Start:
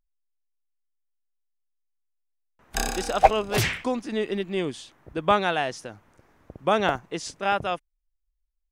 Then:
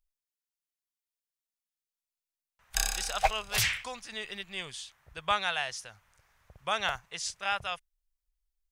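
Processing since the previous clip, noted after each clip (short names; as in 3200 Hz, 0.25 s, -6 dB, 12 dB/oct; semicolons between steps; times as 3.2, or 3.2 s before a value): passive tone stack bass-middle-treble 10-0-10; gain +2 dB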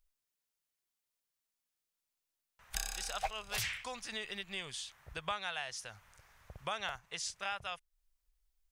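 compressor 2.5:1, threshold -45 dBFS, peak gain reduction 16.5 dB; gain +4 dB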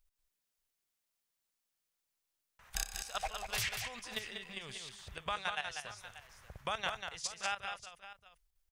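level quantiser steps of 13 dB; tapped delay 0.192/0.585 s -6/-15 dB; gain +4 dB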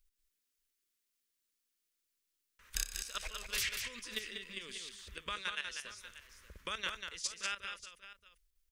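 fixed phaser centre 310 Hz, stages 4; gain +1.5 dB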